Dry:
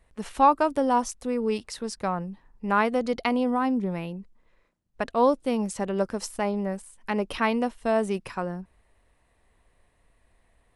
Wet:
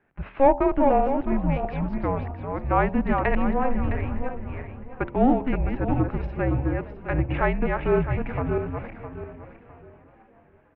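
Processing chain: regenerating reverse delay 0.33 s, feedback 49%, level -4.5 dB; de-hum 76.98 Hz, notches 16; in parallel at -10 dB: one-sided clip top -23 dBFS; on the sum: wow and flutter 17 cents; frequency-shifting echo 0.455 s, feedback 60%, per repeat +76 Hz, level -21.5 dB; mistuned SSB -270 Hz 160–2800 Hz

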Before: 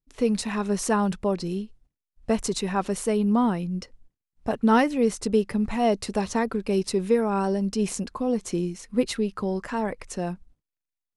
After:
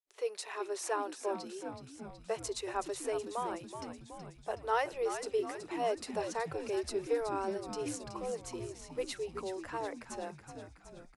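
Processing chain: elliptic high-pass 380 Hz, stop band 40 dB; frequency-shifting echo 0.373 s, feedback 64%, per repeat -90 Hz, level -9 dB; gain -9 dB

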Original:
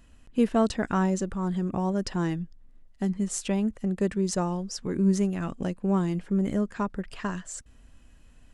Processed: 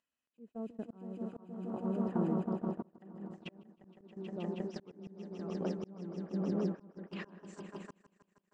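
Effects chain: treble ducked by the level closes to 320 Hz, closed at -24 dBFS; weighting filter A; swelling echo 0.158 s, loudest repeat 5, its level -8 dB; upward compressor, threshold -35 dBFS; gate -36 dBFS, range -47 dB; auto swell 0.8 s; gain +3 dB

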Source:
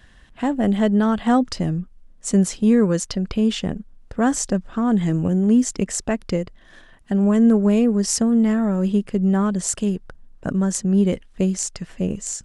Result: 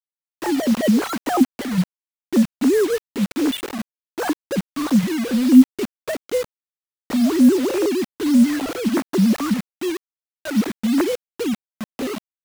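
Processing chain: sine-wave speech; bit-crush 5-bit

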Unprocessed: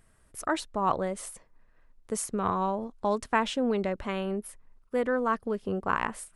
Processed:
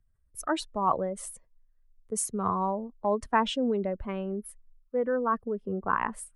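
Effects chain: spectral contrast raised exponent 1.5; three-band expander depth 40%

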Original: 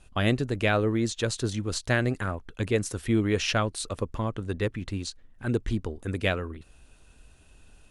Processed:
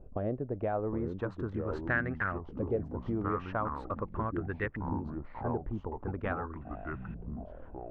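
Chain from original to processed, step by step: Wiener smoothing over 9 samples; dynamic EQ 1500 Hz, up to +6 dB, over -41 dBFS, Q 0.83; compressor 2.5:1, threshold -43 dBFS, peak gain reduction 17.5 dB; LFO low-pass saw up 0.42 Hz 490–2000 Hz; echoes that change speed 0.711 s, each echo -5 st, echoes 3, each echo -6 dB; gain +3.5 dB

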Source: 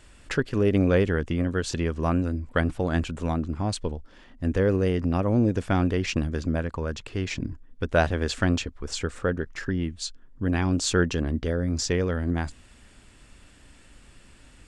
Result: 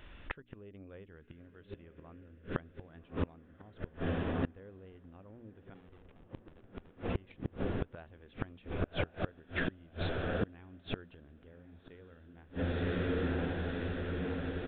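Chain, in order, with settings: notches 60/120/180/240/300 Hz; 5.74–7.1 Schmitt trigger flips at -22 dBFS; diffused feedback echo 1.098 s, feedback 67%, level -9.5 dB; downsampling 8000 Hz; flipped gate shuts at -20 dBFS, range -30 dB

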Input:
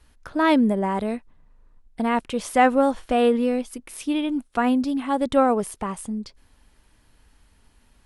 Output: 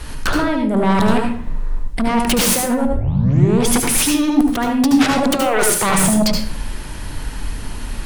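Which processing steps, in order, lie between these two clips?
5.23–5.82 HPF 540 Hz 12 dB/oct; negative-ratio compressor -32 dBFS, ratio -1; sine folder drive 19 dB, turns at -9 dBFS; 2.85 tape start 0.78 s; reverb RT60 0.50 s, pre-delay 71 ms, DRR 1.5 dB; gain -5 dB

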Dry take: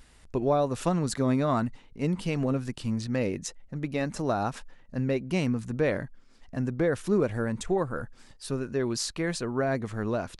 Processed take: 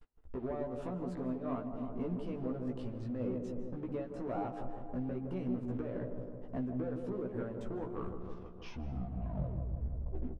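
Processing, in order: tape stop at the end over 2.85 s; notches 50/100/150/200 Hz; expander -46 dBFS; graphic EQ 125/2000/4000/8000 Hz -8/-9/-8/+7 dB; compressor 20:1, threshold -39 dBFS, peak gain reduction 19 dB; sample leveller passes 3; air absorption 380 m; doubler 16 ms -3 dB; on a send: dark delay 0.16 s, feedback 65%, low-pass 900 Hz, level -4 dB; on the sum: digital reverb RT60 0.85 s, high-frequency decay 0.8×, pre-delay 0.115 s, DRR 15.5 dB; noise-modulated level, depth 55%; gain -4.5 dB

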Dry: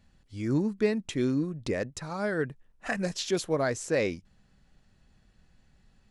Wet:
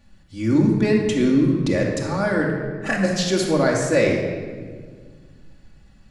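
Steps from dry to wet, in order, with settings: shoebox room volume 2100 m³, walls mixed, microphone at 2.4 m; gain +5.5 dB

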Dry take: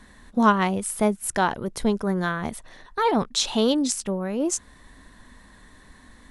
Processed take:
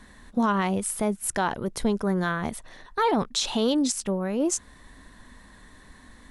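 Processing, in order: limiter -14.5 dBFS, peak gain reduction 9 dB

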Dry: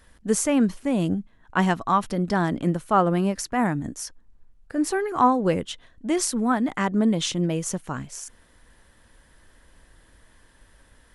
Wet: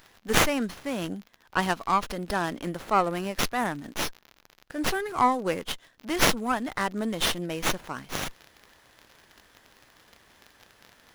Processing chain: crackle 79/s -49 dBFS; RIAA curve recording; running maximum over 5 samples; gain -2.5 dB

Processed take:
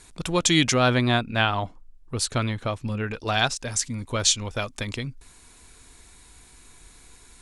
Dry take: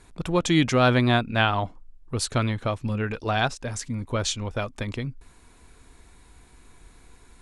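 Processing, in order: bell 7800 Hz +12 dB 2.9 oct, from 0.74 s +4 dB, from 3.27 s +11 dB; gain -1.5 dB

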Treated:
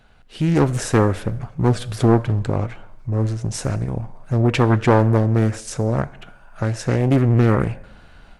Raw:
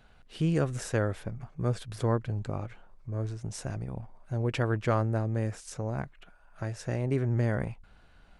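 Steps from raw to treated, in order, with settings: AGC gain up to 7.5 dB; in parallel at -9.5 dB: one-sided clip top -24 dBFS; on the sum: plate-style reverb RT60 0.88 s, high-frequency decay 0.9×, pre-delay 0 ms, DRR 15.5 dB; Doppler distortion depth 0.64 ms; gain +2.5 dB

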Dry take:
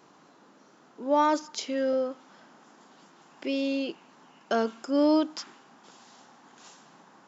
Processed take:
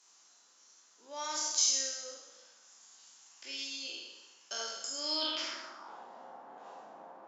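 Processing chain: spectral trails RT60 1.19 s; band-pass sweep 6600 Hz -> 660 Hz, 4.95–6.06; Schroeder reverb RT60 0.4 s, combs from 33 ms, DRR 2 dB; gain +5.5 dB

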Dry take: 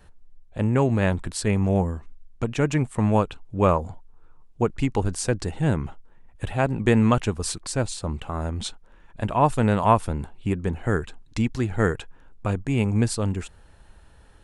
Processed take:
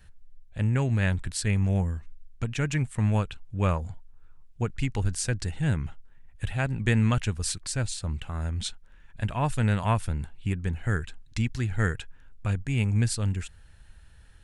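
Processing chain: EQ curve 110 Hz 0 dB, 350 Hz -11 dB, 1100 Hz -10 dB, 1600 Hz -1 dB

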